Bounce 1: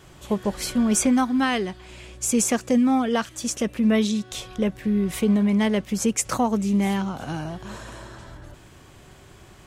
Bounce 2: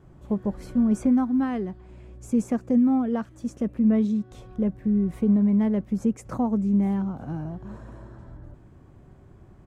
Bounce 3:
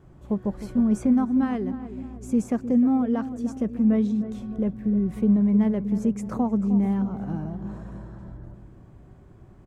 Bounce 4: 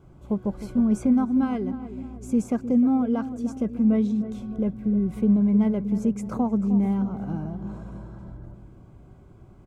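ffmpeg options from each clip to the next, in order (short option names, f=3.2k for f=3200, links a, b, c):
-af "firequalizer=gain_entry='entry(240,0);entry(410,-5);entry(3000,-23)':delay=0.05:min_phase=1"
-filter_complex "[0:a]asplit=2[a][b];[b]adelay=308,lowpass=f=1.2k:p=1,volume=-11.5dB,asplit=2[c][d];[d]adelay=308,lowpass=f=1.2k:p=1,volume=0.55,asplit=2[e][f];[f]adelay=308,lowpass=f=1.2k:p=1,volume=0.55,asplit=2[g][h];[h]adelay=308,lowpass=f=1.2k:p=1,volume=0.55,asplit=2[i][j];[j]adelay=308,lowpass=f=1.2k:p=1,volume=0.55,asplit=2[k][l];[l]adelay=308,lowpass=f=1.2k:p=1,volume=0.55[m];[a][c][e][g][i][k][m]amix=inputs=7:normalize=0"
-af "asuperstop=centerf=1800:order=20:qfactor=7.2"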